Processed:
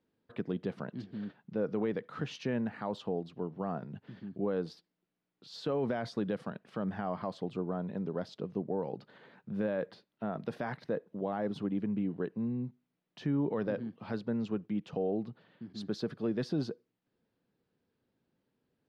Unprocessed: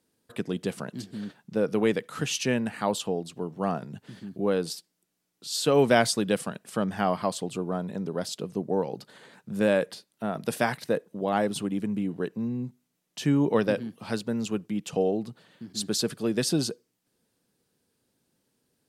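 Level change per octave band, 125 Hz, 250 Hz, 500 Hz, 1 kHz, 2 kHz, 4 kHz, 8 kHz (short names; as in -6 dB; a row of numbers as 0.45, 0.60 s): -6.0 dB, -6.0 dB, -8.5 dB, -10.0 dB, -12.5 dB, -16.0 dB, under -25 dB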